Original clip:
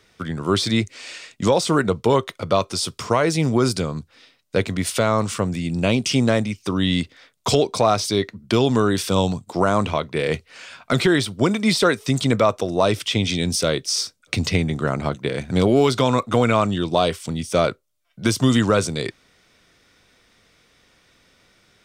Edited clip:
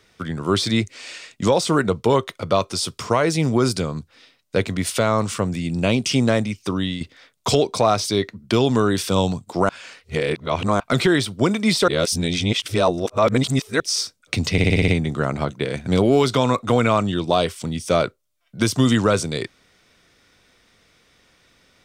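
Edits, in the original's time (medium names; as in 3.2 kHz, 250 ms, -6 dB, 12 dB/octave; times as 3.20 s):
6.70–7.01 s: fade out, to -11.5 dB
9.69–10.80 s: reverse
11.88–13.80 s: reverse
14.52 s: stutter 0.06 s, 7 plays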